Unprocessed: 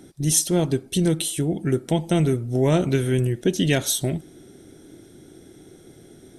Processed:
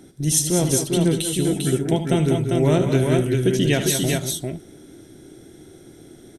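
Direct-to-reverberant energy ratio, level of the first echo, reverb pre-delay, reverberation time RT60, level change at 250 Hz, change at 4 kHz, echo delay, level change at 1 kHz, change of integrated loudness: no reverb audible, −10.5 dB, no reverb audible, no reverb audible, +2.0 dB, +2.5 dB, 75 ms, +2.5 dB, +2.0 dB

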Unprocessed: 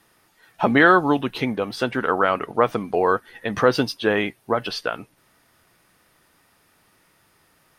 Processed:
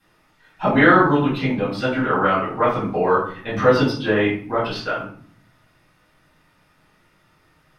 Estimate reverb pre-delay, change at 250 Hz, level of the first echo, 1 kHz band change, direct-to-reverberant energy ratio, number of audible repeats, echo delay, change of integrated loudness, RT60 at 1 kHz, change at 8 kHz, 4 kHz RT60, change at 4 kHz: 4 ms, +3.0 dB, no echo audible, +1.5 dB, −11.5 dB, no echo audible, no echo audible, +2.0 dB, 0.50 s, can't be measured, 0.35 s, −1.0 dB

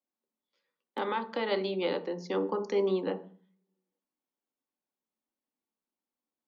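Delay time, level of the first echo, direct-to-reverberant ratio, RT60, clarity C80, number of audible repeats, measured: no echo audible, no echo audible, 8.0 dB, 0.45 s, 20.0 dB, no echo audible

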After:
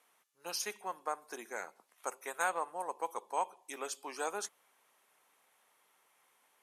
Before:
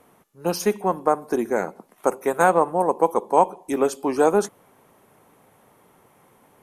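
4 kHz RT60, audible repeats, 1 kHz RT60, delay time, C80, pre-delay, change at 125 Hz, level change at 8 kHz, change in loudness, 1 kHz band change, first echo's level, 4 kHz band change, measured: no reverb audible, no echo audible, no reverb audible, no echo audible, no reverb audible, no reverb audible, below −30 dB, −6.5 dB, −17.5 dB, −16.0 dB, no echo audible, −5.5 dB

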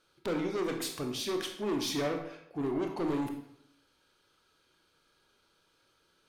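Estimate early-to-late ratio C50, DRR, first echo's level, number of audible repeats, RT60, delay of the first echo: 6.5 dB, 3.0 dB, no echo audible, no echo audible, 0.70 s, no echo audible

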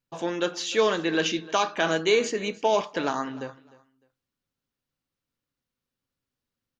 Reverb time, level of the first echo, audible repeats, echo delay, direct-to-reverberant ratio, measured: no reverb audible, −20.5 dB, 2, 303 ms, no reverb audible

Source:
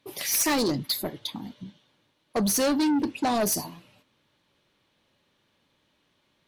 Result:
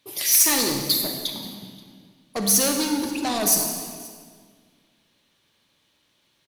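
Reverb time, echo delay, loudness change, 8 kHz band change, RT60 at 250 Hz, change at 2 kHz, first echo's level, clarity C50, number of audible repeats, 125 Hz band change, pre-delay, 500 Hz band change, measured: 1.8 s, 530 ms, +5.5 dB, +9.0 dB, 2.2 s, +3.0 dB, −24.0 dB, 3.5 dB, 1, 0.0 dB, 35 ms, −0.5 dB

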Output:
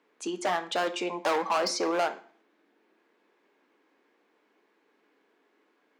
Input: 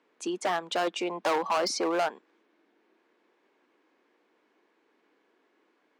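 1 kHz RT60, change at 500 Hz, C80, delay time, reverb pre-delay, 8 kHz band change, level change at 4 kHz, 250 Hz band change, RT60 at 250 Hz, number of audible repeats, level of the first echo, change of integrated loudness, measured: 0.45 s, 0.0 dB, 18.5 dB, no echo audible, 3 ms, 0.0 dB, +0.5 dB, −0.5 dB, 0.45 s, no echo audible, no echo audible, 0.0 dB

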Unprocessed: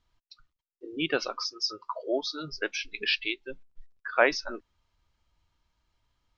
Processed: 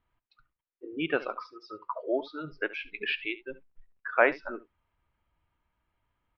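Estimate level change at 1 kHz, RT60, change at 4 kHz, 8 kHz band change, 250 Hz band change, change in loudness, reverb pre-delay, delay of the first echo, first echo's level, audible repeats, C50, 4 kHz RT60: 0.0 dB, no reverb audible, −10.0 dB, can't be measured, −0.5 dB, −1.5 dB, no reverb audible, 71 ms, −17.5 dB, 1, no reverb audible, no reverb audible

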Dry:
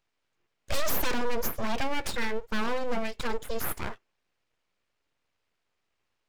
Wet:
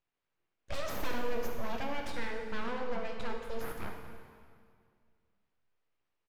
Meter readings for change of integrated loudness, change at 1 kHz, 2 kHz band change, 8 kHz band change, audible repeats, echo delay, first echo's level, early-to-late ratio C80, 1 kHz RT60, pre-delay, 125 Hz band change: −7.0 dB, −6.0 dB, −7.0 dB, −14.0 dB, 1, 75 ms, −12.5 dB, 5.5 dB, 2.1 s, 10 ms, −5.5 dB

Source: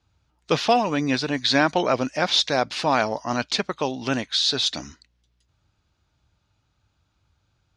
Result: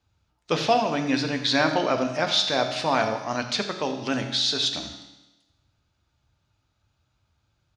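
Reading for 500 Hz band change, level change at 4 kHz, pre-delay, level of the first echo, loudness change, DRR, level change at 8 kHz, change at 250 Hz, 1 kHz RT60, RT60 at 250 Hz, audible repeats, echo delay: −1.5 dB, −1.5 dB, 6 ms, −15.5 dB, −1.5 dB, 5.0 dB, −2.0 dB, −2.0 dB, 1.1 s, 1.1 s, 1, 83 ms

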